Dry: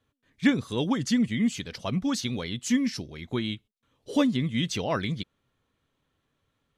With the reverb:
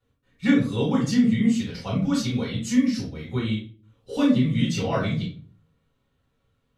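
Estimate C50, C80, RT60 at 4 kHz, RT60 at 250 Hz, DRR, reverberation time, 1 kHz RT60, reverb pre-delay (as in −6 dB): 5.0 dB, 11.5 dB, 0.30 s, 0.60 s, −5.5 dB, 0.45 s, 0.35 s, 5 ms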